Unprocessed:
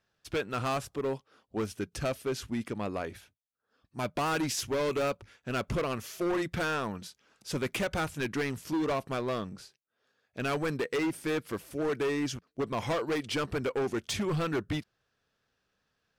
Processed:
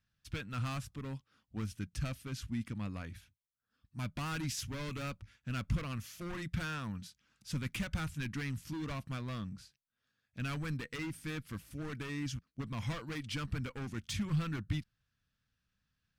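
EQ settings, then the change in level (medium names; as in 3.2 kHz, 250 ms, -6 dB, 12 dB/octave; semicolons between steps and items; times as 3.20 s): amplifier tone stack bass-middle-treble 6-0-2; peaking EQ 390 Hz -12.5 dB 0.47 oct; treble shelf 2.4 kHz -9 dB; +16.0 dB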